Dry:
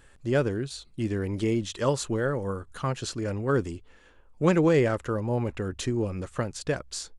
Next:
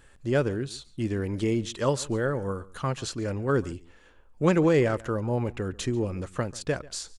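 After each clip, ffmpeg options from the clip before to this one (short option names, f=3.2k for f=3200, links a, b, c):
-filter_complex "[0:a]asplit=2[a][b];[b]adelay=139.9,volume=-21dB,highshelf=f=4k:g=-3.15[c];[a][c]amix=inputs=2:normalize=0"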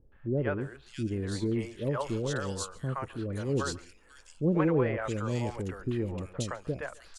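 -filter_complex "[0:a]acrossover=split=550|2600[a][b][c];[b]adelay=120[d];[c]adelay=610[e];[a][d][e]amix=inputs=3:normalize=0,volume=-3dB"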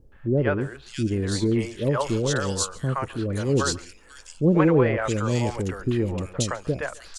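-af "equalizer=f=6.1k:t=o:w=1.5:g=4.5,volume=7.5dB"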